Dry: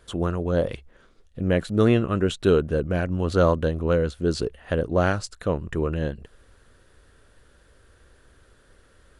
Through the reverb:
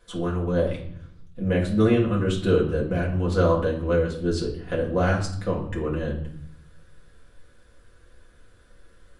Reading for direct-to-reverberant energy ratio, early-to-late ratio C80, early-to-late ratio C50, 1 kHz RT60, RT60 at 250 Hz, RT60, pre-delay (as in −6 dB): −4.5 dB, 12.0 dB, 8.0 dB, 0.65 s, 1.0 s, 0.65 s, 4 ms